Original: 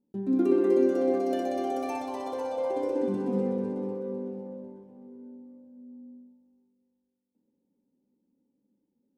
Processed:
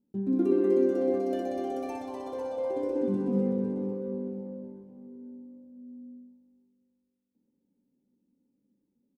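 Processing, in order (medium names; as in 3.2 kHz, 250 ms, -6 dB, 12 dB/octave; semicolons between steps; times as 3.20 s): bass shelf 350 Hz +9.5 dB; doubling 21 ms -12.5 dB; trim -6 dB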